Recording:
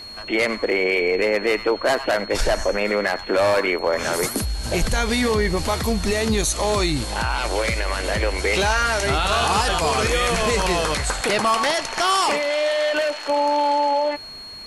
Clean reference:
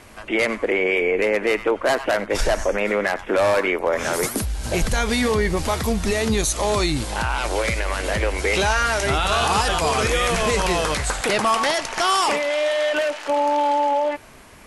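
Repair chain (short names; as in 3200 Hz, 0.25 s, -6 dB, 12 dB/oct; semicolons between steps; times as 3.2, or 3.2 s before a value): clip repair -12 dBFS; notch 4300 Hz, Q 30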